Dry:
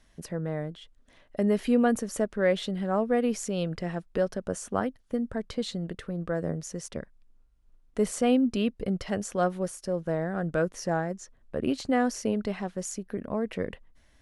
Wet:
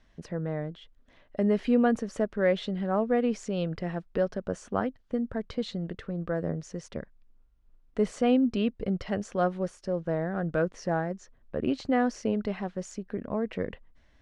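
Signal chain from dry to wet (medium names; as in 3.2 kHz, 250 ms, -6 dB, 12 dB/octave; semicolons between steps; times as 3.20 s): distance through air 120 m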